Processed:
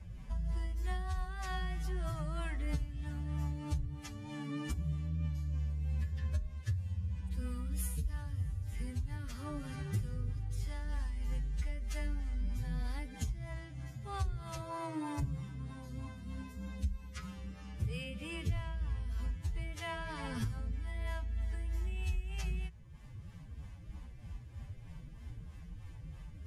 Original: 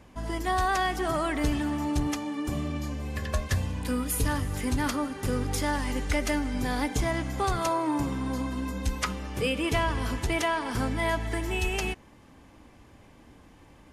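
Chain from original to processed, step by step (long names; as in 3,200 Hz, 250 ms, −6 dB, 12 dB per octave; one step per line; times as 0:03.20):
drawn EQ curve 160 Hz 0 dB, 270 Hz −20 dB, 2,000 Hz −14 dB
downward compressor 16 to 1, threshold −43 dBFS, peak gain reduction 21.5 dB
rotating-speaker cabinet horn 6 Hz
phase-vocoder stretch with locked phases 1.9×
hum removal 64.77 Hz, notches 6
level +12.5 dB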